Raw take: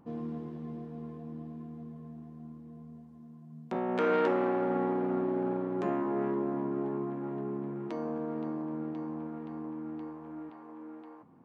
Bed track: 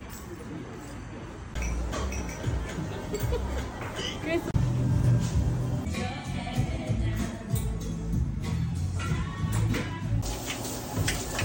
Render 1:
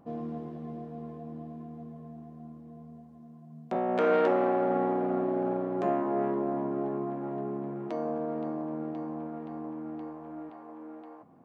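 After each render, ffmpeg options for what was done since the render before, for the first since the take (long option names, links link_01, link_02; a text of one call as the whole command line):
ffmpeg -i in.wav -af "equalizer=frequency=670:width=2.1:gain=9,bandreject=frequency=900:width=12" out.wav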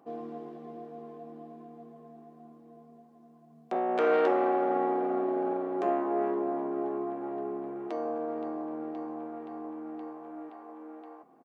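ffmpeg -i in.wav -af "highpass=290,aecho=1:1:2.6:0.3" out.wav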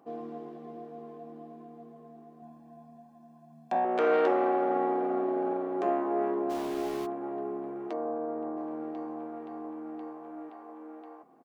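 ffmpeg -i in.wav -filter_complex "[0:a]asettb=1/sr,asplit=3[link_01][link_02][link_03];[link_01]atrim=end=2.424[link_04];[link_02]atrim=start=2.42:end=3.85,asetpts=PTS-STARTPTS,afade=type=in:duration=0.004:curve=qsin,afade=type=out:start_time=1.426:duration=0.004:curve=qsin,aecho=1:1:1.2:0.87,atrim=end_sample=63063[link_05];[link_03]atrim=start=3.846[link_06];[link_04][link_05]acrossfade=duration=0.004:curve1=hsin:curve2=qsin[link_07];[link_07][link_06]acrossfade=duration=0.004:curve1=qsin:curve2=hsin,asplit=3[link_08][link_09][link_10];[link_08]afade=type=out:start_time=6.49:duration=0.02[link_11];[link_09]aeval=exprs='val(0)*gte(abs(val(0)),0.0126)':channel_layout=same,afade=type=in:start_time=6.49:duration=0.02,afade=type=out:start_time=7.05:duration=0.02[link_12];[link_10]afade=type=in:start_time=7.05:duration=0.02[link_13];[link_11][link_12][link_13]amix=inputs=3:normalize=0,asettb=1/sr,asplit=3[link_14][link_15][link_16];[link_14]atrim=end=7.934[link_17];[link_15]atrim=start=7.93:end=8.57,asetpts=PTS-STARTPTS,afade=type=in:duration=0.004:curve=qsin,afade=type=out:start_time=0.636:duration=0.004:curve=qsin,lowpass=1500[link_18];[link_16]atrim=start=8.566[link_19];[link_17][link_18]acrossfade=duration=0.004:curve1=hsin:curve2=qsin[link_20];[link_20][link_19]acrossfade=duration=0.004:curve1=qsin:curve2=hsin" out.wav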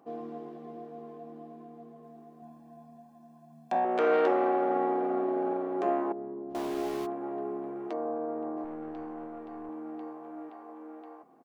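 ffmpeg -i in.wav -filter_complex "[0:a]asettb=1/sr,asplit=3[link_01][link_02][link_03];[link_01]atrim=end=2.034[link_04];[link_02]atrim=start=2.03:end=3.98,asetpts=PTS-STARTPTS,afade=type=in:duration=0.004:curve=qsin,afade=type=out:start_time=1.946:duration=0.004:curve=qsin,highshelf=frequency=4900:gain=4.5[link_05];[link_03]atrim=start=3.976[link_06];[link_04][link_05]acrossfade=duration=0.004:curve1=hsin:curve2=qsin[link_07];[link_07][link_06]acrossfade=duration=0.004:curve1=qsin:curve2=hsin,asettb=1/sr,asplit=3[link_08][link_09][link_10];[link_08]atrim=end=6.124[link_11];[link_09]atrim=start=6.12:end=6.55,asetpts=PTS-STARTPTS,afade=type=in:duration=0.004:curve=qsin,afade=type=out:start_time=0.426:duration=0.004:curve=qsin,bandpass=frequency=110:width_type=q:width=0.86[link_12];[link_10]atrim=start=6.546[link_13];[link_11][link_12]acrossfade=duration=0.004:curve1=hsin:curve2=qsin[link_14];[link_14][link_13]acrossfade=duration=0.004:curve1=qsin:curve2=hsin,asettb=1/sr,asplit=3[link_15][link_16][link_17];[link_15]atrim=end=8.644[link_18];[link_16]atrim=start=8.64:end=9.69,asetpts=PTS-STARTPTS,afade=type=in:duration=0.004:curve=qsin,afade=type=out:start_time=1.046:duration=0.004:curve=qsin,aeval=exprs='(tanh(44.7*val(0)+0.3)-tanh(0.3))/44.7':channel_layout=same[link_19];[link_17]atrim=start=9.686[link_20];[link_18][link_19]acrossfade=duration=0.004:curve1=hsin:curve2=qsin[link_21];[link_21][link_20]acrossfade=duration=0.004:curve1=qsin:curve2=hsin" out.wav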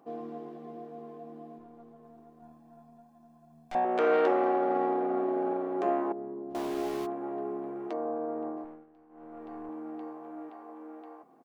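ffmpeg -i in.wav -filter_complex "[0:a]asettb=1/sr,asplit=3[link_01][link_02][link_03];[link_01]atrim=end=1.584[link_04];[link_02]atrim=start=1.58:end=3.75,asetpts=PTS-STARTPTS,afade=type=in:duration=0.004:curve=qsin,afade=type=out:start_time=2.166:duration=0.004:curve=qsin,aeval=exprs='(tanh(70.8*val(0)+0.65)-tanh(0.65))/70.8':channel_layout=same[link_05];[link_03]atrim=start=3.746[link_06];[link_04][link_05]acrossfade=duration=0.004:curve1=hsin:curve2=qsin[link_07];[link_07][link_06]acrossfade=duration=0.004:curve1=qsin:curve2=hsin,asettb=1/sr,asplit=3[link_08][link_09][link_10];[link_08]atrim=end=4.434[link_11];[link_09]atrim=start=4.43:end=5.15,asetpts=PTS-STARTPTS,afade=type=in:duration=0.004:curve=qsin,afade=type=out:start_time=0.716:duration=0.004:curve=qsin,adynamicsmooth=sensitivity=5.5:basefreq=3600[link_12];[link_10]atrim=start=5.146[link_13];[link_11][link_12]acrossfade=duration=0.004:curve1=hsin:curve2=qsin[link_14];[link_14][link_13]acrossfade=duration=0.004:curve1=qsin:curve2=hsin,asplit=3[link_15][link_16][link_17];[link_15]atrim=end=8.86,asetpts=PTS-STARTPTS,afade=type=out:start_time=8.46:duration=0.4:silence=0.1[link_18];[link_16]atrim=start=8.86:end=9.09,asetpts=PTS-STARTPTS,volume=-20dB[link_19];[link_17]atrim=start=9.09,asetpts=PTS-STARTPTS,afade=type=in:duration=0.4:silence=0.1[link_20];[link_18][link_19][link_20]concat=n=3:v=0:a=1" out.wav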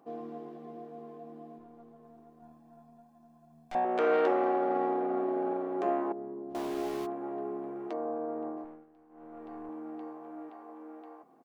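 ffmpeg -i in.wav -af "volume=-1.5dB" out.wav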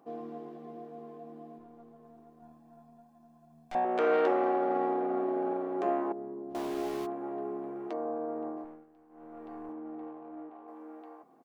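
ffmpeg -i in.wav -filter_complex "[0:a]asettb=1/sr,asplit=3[link_01][link_02][link_03];[link_01]atrim=end=9.724[link_04];[link_02]atrim=start=9.72:end=10.68,asetpts=PTS-STARTPTS,afade=type=in:duration=0.004:curve=qsin,afade=type=out:start_time=0.956:duration=0.004:curve=qsin,adynamicsmooth=sensitivity=5:basefreq=1300[link_05];[link_03]atrim=start=10.676[link_06];[link_04][link_05]acrossfade=duration=0.004:curve1=hsin:curve2=qsin[link_07];[link_07][link_06]acrossfade=duration=0.004:curve1=qsin:curve2=hsin" out.wav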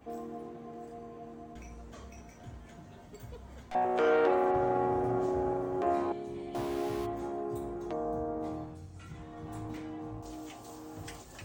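ffmpeg -i in.wav -i bed.wav -filter_complex "[1:a]volume=-18dB[link_01];[0:a][link_01]amix=inputs=2:normalize=0" out.wav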